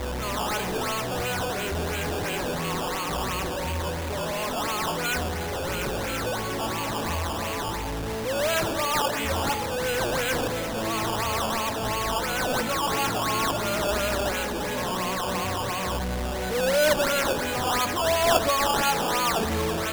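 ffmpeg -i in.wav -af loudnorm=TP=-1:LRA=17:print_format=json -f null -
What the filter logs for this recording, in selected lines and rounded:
"input_i" : "-25.6",
"input_tp" : "-7.8",
"input_lra" : "4.8",
"input_thresh" : "-35.6",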